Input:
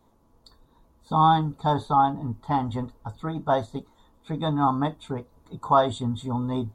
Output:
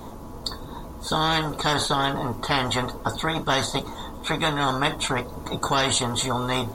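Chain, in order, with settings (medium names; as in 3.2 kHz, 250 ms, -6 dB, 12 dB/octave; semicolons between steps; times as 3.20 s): spectrum-flattening compressor 4:1; trim -1.5 dB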